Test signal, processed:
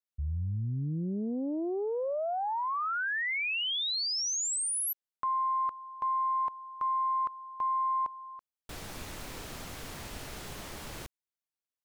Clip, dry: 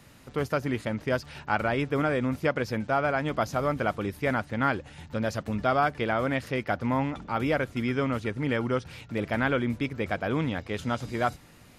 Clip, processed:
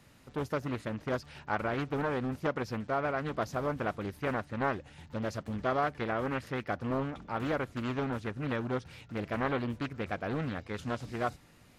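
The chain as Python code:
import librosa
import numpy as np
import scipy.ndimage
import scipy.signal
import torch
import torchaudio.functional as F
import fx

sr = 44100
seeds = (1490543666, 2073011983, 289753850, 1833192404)

y = fx.doppler_dist(x, sr, depth_ms=0.56)
y = y * 10.0 ** (-6.0 / 20.0)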